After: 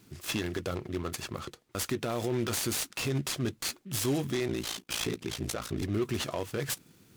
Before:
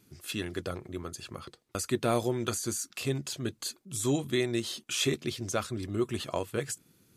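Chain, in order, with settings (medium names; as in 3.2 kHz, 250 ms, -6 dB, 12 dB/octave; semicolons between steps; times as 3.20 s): peak limiter -25.5 dBFS, peak gain reduction 11.5 dB; 4.47–5.82 s: ring modulator 28 Hz; delay time shaken by noise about 2.1 kHz, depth 0.032 ms; trim +5 dB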